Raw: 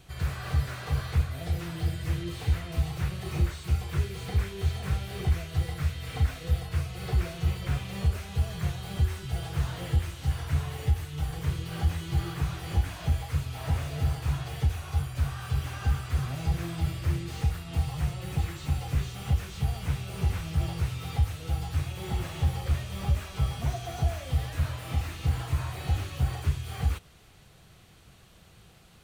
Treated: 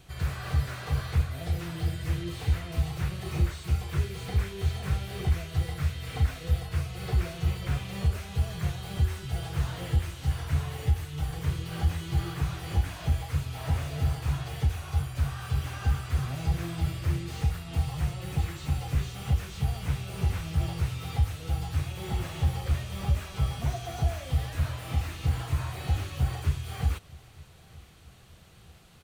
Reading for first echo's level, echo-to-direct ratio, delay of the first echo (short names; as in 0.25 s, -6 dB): -23.5 dB, -22.5 dB, 0.919 s